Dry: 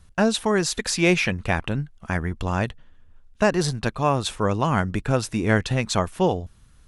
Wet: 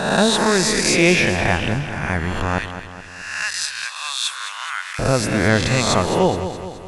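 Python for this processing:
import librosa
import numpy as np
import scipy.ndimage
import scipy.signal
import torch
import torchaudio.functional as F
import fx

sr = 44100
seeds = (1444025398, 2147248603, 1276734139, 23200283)

y = fx.spec_swells(x, sr, rise_s=1.13)
y = fx.highpass(y, sr, hz=1500.0, slope=24, at=(2.58, 4.99))
y = fx.echo_feedback(y, sr, ms=211, feedback_pct=54, wet_db=-10.5)
y = y * librosa.db_to_amplitude(2.0)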